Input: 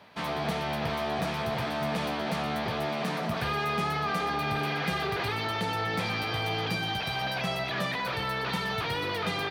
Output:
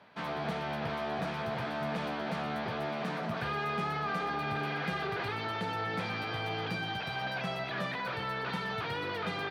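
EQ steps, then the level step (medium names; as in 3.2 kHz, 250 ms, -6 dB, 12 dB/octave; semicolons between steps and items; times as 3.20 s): high-pass 92 Hz; low-pass 3.2 kHz 6 dB/octave; peaking EQ 1.5 kHz +4.5 dB 0.23 oct; -4.0 dB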